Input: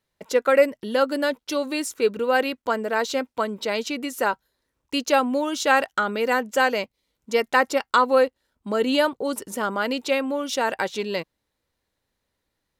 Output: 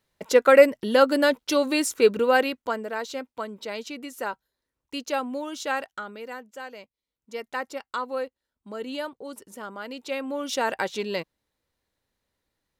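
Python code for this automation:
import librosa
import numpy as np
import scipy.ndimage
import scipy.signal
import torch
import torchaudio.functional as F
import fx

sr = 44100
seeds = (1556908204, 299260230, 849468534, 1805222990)

y = fx.gain(x, sr, db=fx.line((2.17, 3.0), (3.01, -8.0), (5.63, -8.0), (6.62, -19.0), (7.52, -12.0), (9.89, -12.0), (10.49, -2.0)))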